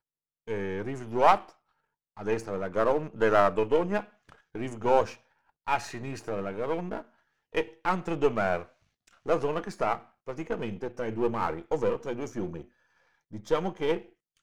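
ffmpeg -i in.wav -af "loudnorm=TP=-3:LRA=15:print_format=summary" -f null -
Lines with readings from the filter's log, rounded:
Input Integrated:    -29.7 LUFS
Input True Peak:      -6.2 dBTP
Input LRA:             5.7 LU
Input Threshold:     -40.7 LUFS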